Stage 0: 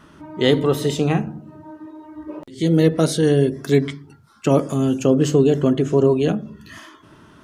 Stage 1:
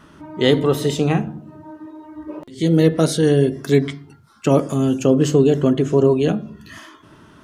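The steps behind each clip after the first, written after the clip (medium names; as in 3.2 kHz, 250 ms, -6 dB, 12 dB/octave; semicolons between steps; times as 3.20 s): de-hum 349.9 Hz, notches 13; trim +1 dB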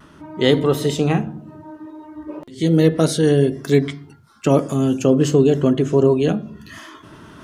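reverse; upward compressor, threshold -34 dBFS; reverse; vibrato 0.31 Hz 10 cents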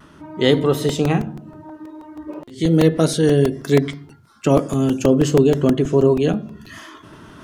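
crackling interface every 0.16 s, samples 128, repeat, from 0.89 s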